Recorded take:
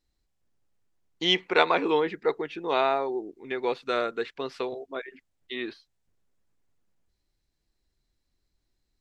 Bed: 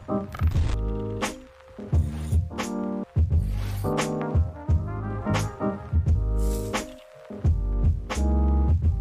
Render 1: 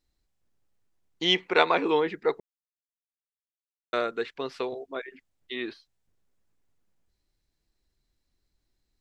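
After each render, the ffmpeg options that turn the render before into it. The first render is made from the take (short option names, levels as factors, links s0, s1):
-filter_complex "[0:a]asplit=3[s0][s1][s2];[s0]atrim=end=2.4,asetpts=PTS-STARTPTS,afade=t=out:st=2.396:d=0.004:c=hsin[s3];[s1]atrim=start=2.4:end=3.93,asetpts=PTS-STARTPTS,volume=0[s4];[s2]atrim=start=3.93,asetpts=PTS-STARTPTS,afade=t=in:d=0.004:c=hsin[s5];[s3][s4][s5]concat=n=3:v=0:a=1"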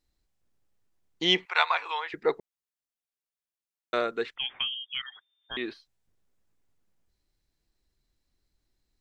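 -filter_complex "[0:a]asettb=1/sr,asplit=3[s0][s1][s2];[s0]atrim=end=1.454[s3];[s1]atrim=start=1.45:end=2.14,asetpts=PTS-STARTPTS,afade=t=in:d=0.004:c=qsin,afade=t=out:st=0.686:d=0.004:c=qsin,highpass=f=840:w=0.5412,highpass=f=840:w=1.3066[s4];[s2]atrim=start=2.136[s5];[s3][s4]acrossfade=d=0.004:c1=hsin:c2=qsin[s6];[s6][s5]acrossfade=d=0.004:c1=qsin:c2=hsin,asettb=1/sr,asplit=3[s7][s8][s9];[s7]atrim=end=4.364[s10];[s8]atrim=start=4.36:end=5.57,asetpts=PTS-STARTPTS,afade=t=in:d=0.004:c=qsin,afade=t=out:st=1.206:d=0.004:c=qsin,lowpass=f=3100:t=q:w=0.5098,lowpass=f=3100:t=q:w=0.6013,lowpass=f=3100:t=q:w=0.9,lowpass=f=3100:t=q:w=2.563,afreqshift=-3600[s11];[s9]atrim=start=5.566[s12];[s10][s11]acrossfade=d=0.004:c1=hsin:c2=qsin[s13];[s13][s12]acrossfade=d=0.004:c1=qsin:c2=hsin"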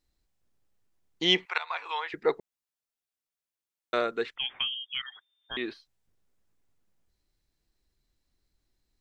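-filter_complex "[0:a]asplit=2[s0][s1];[s0]atrim=end=1.58,asetpts=PTS-STARTPTS,afade=t=out:st=1.576:d=0.004:c=hsin:silence=0.0944061[s2];[s1]atrim=start=1.58,asetpts=PTS-STARTPTS,afade=t=in:d=0.41:silence=0.0944061[s3];[s2][s3]concat=n=2:v=0:a=1"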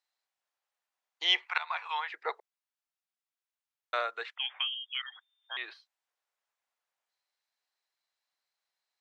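-af "highpass=f=690:w=0.5412,highpass=f=690:w=1.3066,highshelf=f=5900:g=-10"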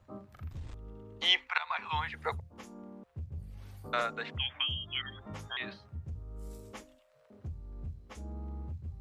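-filter_complex "[1:a]volume=0.106[s0];[0:a][s0]amix=inputs=2:normalize=0"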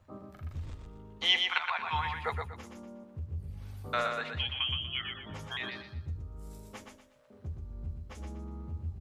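-filter_complex "[0:a]asplit=2[s0][s1];[s1]adelay=12,volume=0.251[s2];[s0][s2]amix=inputs=2:normalize=0,asplit=2[s3][s4];[s4]aecho=0:1:121|242|363|484:0.562|0.174|0.054|0.0168[s5];[s3][s5]amix=inputs=2:normalize=0"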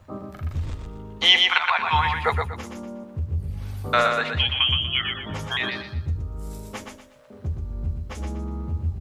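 -af "volume=3.76,alimiter=limit=0.708:level=0:latency=1"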